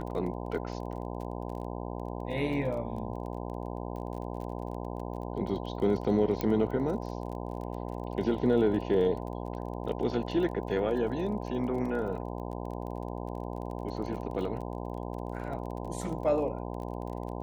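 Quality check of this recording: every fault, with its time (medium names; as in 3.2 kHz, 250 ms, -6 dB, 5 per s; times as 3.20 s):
buzz 60 Hz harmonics 17 -37 dBFS
crackle 30 per s -39 dBFS
6.41 s: pop -16 dBFS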